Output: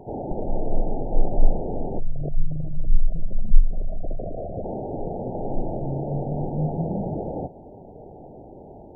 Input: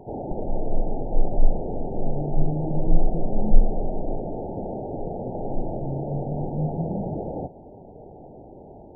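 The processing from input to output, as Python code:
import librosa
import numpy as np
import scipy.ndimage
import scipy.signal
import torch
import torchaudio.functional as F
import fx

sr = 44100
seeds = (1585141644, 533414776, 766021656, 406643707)

y = fx.envelope_sharpen(x, sr, power=3.0, at=(1.98, 4.63), fade=0.02)
y = y * 10.0 ** (1.0 / 20.0)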